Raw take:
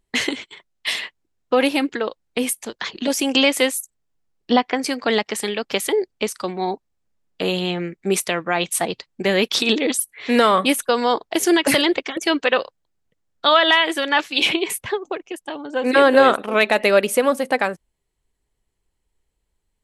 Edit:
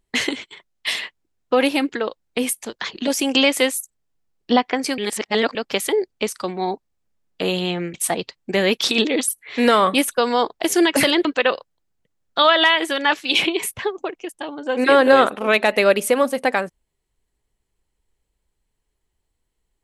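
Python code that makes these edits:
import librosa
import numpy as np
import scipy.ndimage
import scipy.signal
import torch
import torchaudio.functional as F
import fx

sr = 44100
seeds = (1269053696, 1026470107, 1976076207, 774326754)

y = fx.edit(x, sr, fx.reverse_span(start_s=4.98, length_s=0.57),
    fx.cut(start_s=7.94, length_s=0.71),
    fx.cut(start_s=11.96, length_s=0.36), tone=tone)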